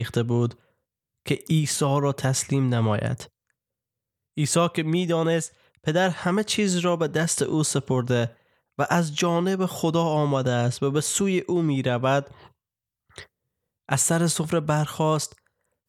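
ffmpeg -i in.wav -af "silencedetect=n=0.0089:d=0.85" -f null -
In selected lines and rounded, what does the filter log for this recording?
silence_start: 3.26
silence_end: 4.37 | silence_duration: 1.11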